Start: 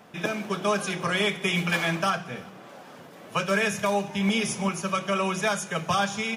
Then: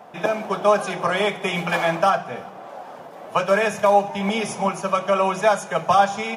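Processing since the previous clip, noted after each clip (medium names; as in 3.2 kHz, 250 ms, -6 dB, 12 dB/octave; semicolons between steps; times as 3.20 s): peaking EQ 750 Hz +14.5 dB 1.5 oct; trim -2 dB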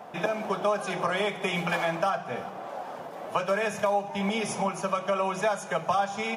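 compression 2.5:1, threshold -27 dBFS, peak gain reduction 11 dB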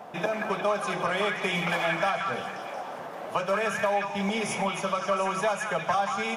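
repeats whose band climbs or falls 179 ms, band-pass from 1.6 kHz, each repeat 0.7 oct, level 0 dB; in parallel at -7 dB: saturation -26 dBFS, distortion -10 dB; on the sum: trim -2.5 dB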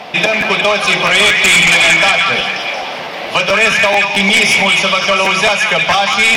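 high-order bell 3.3 kHz +14.5 dB; sine folder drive 9 dB, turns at -5 dBFS; crackling interface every 0.22 s, samples 512, repeat, from 0.40 s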